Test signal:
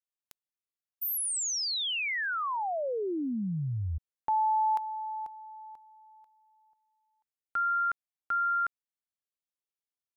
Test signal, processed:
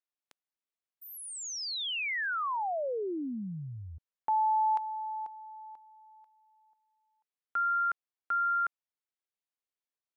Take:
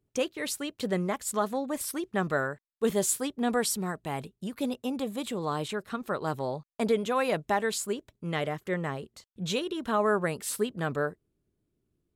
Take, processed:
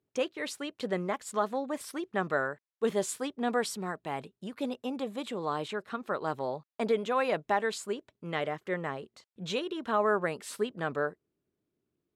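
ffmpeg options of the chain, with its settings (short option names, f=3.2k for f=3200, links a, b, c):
-af "highpass=f=330:p=1,aemphasis=mode=reproduction:type=50fm"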